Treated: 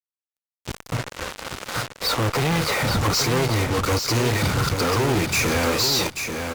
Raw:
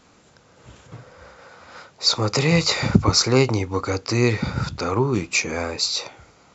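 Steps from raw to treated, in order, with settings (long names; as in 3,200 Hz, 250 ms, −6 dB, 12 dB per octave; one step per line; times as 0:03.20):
0:01.89–0:02.94: low-pass filter 2,200 Hz 12 dB per octave
automatic gain control gain up to 10 dB
fuzz pedal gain 40 dB, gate −31 dBFS
repeating echo 838 ms, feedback 15%, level −6.5 dB
level −6.5 dB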